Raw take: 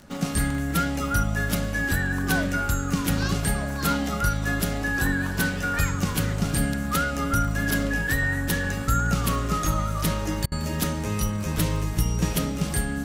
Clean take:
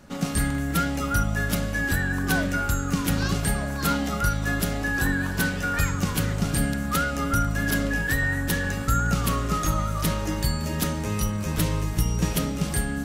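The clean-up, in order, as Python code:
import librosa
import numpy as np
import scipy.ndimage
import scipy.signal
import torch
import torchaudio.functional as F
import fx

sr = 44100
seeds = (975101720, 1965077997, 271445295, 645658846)

y = fx.fix_declick_ar(x, sr, threshold=6.5)
y = fx.fix_interpolate(y, sr, at_s=(10.46,), length_ms=57.0)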